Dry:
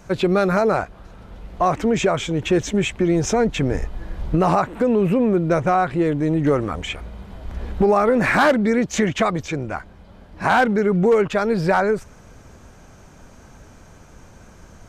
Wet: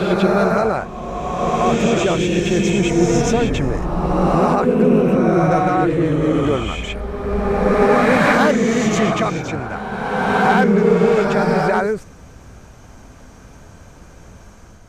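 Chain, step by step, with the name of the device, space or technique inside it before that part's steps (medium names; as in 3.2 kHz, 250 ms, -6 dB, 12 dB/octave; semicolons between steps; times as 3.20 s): reverse reverb (reverse; reverberation RT60 2.5 s, pre-delay 82 ms, DRR -2 dB; reverse); trim -1 dB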